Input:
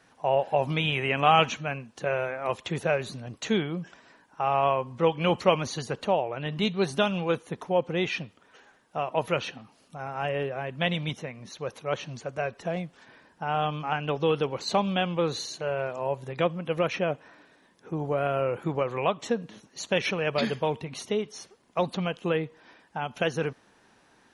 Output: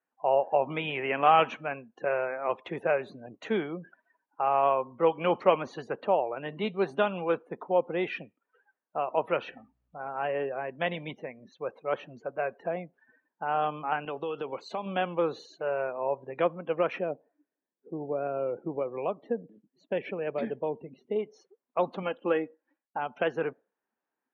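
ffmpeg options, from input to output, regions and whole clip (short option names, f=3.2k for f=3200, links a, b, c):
-filter_complex "[0:a]asettb=1/sr,asplit=3[a][b][c];[a]atrim=end=9.424[d];[b]atrim=start=9.42:end=10.05,asetpts=PTS-STARTPTS,afade=t=in:d=0.004:c=qsin,afade=t=out:st=0.626:d=0.004:c=qsin,bandreject=f=65.72:t=h:w=4,bandreject=f=131.44:t=h:w=4,bandreject=f=197.16:t=h:w=4,bandreject=f=262.88:t=h:w=4,bandreject=f=328.6:t=h:w=4,bandreject=f=394.32:t=h:w=4,bandreject=f=460.04:t=h:w=4,bandreject=f=525.76:t=h:w=4,bandreject=f=591.48:t=h:w=4,bandreject=f=657.2:t=h:w=4,bandreject=f=722.92:t=h:w=4,bandreject=f=788.64:t=h:w=4,bandreject=f=854.36:t=h:w=4,bandreject=f=920.08:t=h:w=4,bandreject=f=985.8:t=h:w=4,bandreject=f=1.05152k:t=h:w=4,bandreject=f=1.11724k:t=h:w=4,bandreject=f=1.18296k:t=h:w=4,bandreject=f=1.24868k:t=h:w=4,bandreject=f=1.3144k:t=h:w=4,bandreject=f=1.38012k:t=h:w=4,bandreject=f=1.44584k:t=h:w=4,bandreject=f=1.51156k:t=h:w=4,bandreject=f=1.57728k:t=h:w=4,bandreject=f=1.643k:t=h:w=4,bandreject=f=1.70872k:t=h:w=4,bandreject=f=1.77444k:t=h:w=4,bandreject=f=1.84016k:t=h:w=4,bandreject=f=1.90588k:t=h:w=4,bandreject=f=1.9716k:t=h:w=4,bandreject=f=2.03732k:t=h:w=4,bandreject=f=2.10304k:t=h:w=4,bandreject=f=2.16876k:t=h:w=4,bandreject=f=2.23448k:t=h:w=4,bandreject=f=2.3002k:t=h:w=4,bandreject=f=2.36592k:t=h:w=4,bandreject=f=2.43164k:t=h:w=4,aeval=exprs='val(0)+0.00158*(sin(2*PI*60*n/s)+sin(2*PI*2*60*n/s)/2+sin(2*PI*3*60*n/s)/3+sin(2*PI*4*60*n/s)/4+sin(2*PI*5*60*n/s)/5)':c=same[e];[c]atrim=start=10.046[f];[d][e]acrossfade=d=0.004:c1=hsin:c2=qsin[g];[g][f]acrossfade=d=0.004:c1=qsin:c2=hsin,asettb=1/sr,asplit=3[h][i][j];[h]atrim=end=14.054[k];[i]atrim=start=14.05:end=14.86,asetpts=PTS-STARTPTS,afade=t=in:d=0.004:c=qsin,afade=t=out:st=0.806:d=0.004:c=qsin,agate=range=-33dB:threshold=-35dB:ratio=3:release=100:detection=peak,highshelf=f=2.6k:g=9.5,acompressor=threshold=-28dB:ratio=5:attack=3.2:release=140:knee=1:detection=peak[l];[j]atrim=start=14.856[m];[k][l]acrossfade=d=0.004:c1=hsin:c2=qsin[n];[n][m]acrossfade=d=0.004:c1=qsin:c2=hsin,asettb=1/sr,asplit=3[o][p][q];[o]atrim=end=17.004[r];[p]atrim=start=17:end=21.16,asetpts=PTS-STARTPTS,afade=t=in:d=0.004:c=qsin,afade=t=out:st=4.156:d=0.004:c=qsin,lowpass=f=1.5k:p=1,equalizer=f=1.1k:w=0.92:g=-7.5[s];[q]atrim=start=21.156[t];[r][s]acrossfade=d=0.004:c1=hsin:c2=qsin[u];[u][t]acrossfade=d=0.004:c1=qsin:c2=hsin,asettb=1/sr,asplit=3[v][w][x];[v]atrim=end=22.024[y];[w]atrim=start=22.02:end=22.99,asetpts=PTS-STARTPTS,afade=t=in:d=0.004:c=qsin,afade=t=out:st=0.966:d=0.004:c=qsin,agate=range=-33dB:threshold=-51dB:ratio=3:release=100:detection=peak,aecho=1:1:3.6:0.55,atrim=end_sample=42777[z];[x]atrim=start=22.986[aa];[y][z]acrossfade=d=0.004:c1=hsin:c2=qsin[ab];[ab][aa]acrossfade=d=0.004:c1=qsin:c2=hsin,afftdn=nr=26:nf=-44,acrossover=split=230 2500:gain=0.126 1 0.0891[ac][ad][ae];[ac][ad][ae]amix=inputs=3:normalize=0"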